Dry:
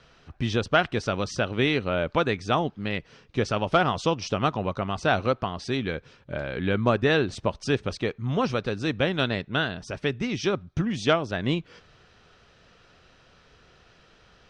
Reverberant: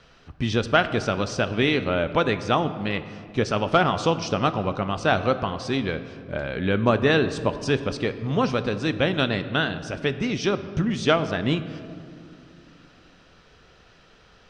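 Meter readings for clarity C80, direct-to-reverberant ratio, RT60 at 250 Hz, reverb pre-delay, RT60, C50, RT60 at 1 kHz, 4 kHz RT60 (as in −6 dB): 13.5 dB, 11.0 dB, 3.3 s, 4 ms, 2.3 s, 12.5 dB, 2.0 s, 1.3 s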